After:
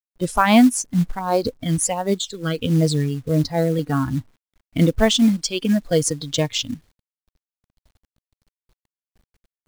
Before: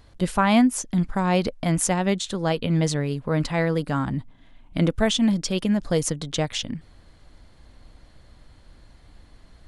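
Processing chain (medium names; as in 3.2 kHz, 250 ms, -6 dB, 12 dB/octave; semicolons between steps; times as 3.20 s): gate -44 dBFS, range -15 dB; spectral noise reduction 15 dB; 1.19–3.79 s: phase shifter stages 12, 1.4 Hz, lowest notch 710–2800 Hz; companded quantiser 6-bit; trim +5 dB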